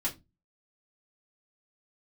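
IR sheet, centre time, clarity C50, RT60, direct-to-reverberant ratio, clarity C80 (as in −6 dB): 14 ms, 16.0 dB, 0.20 s, −5.0 dB, 24.5 dB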